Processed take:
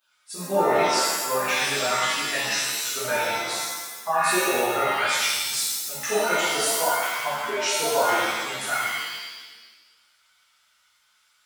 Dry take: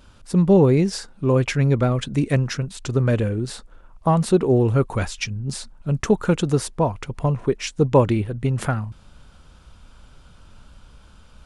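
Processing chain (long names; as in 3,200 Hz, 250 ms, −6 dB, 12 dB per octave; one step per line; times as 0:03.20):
spectral dynamics exaggerated over time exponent 1.5
high-pass filter 1,000 Hz 12 dB per octave
brickwall limiter −24 dBFS, peak gain reduction 10 dB
reverb with rising layers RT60 1.2 s, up +7 semitones, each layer −2 dB, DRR −11.5 dB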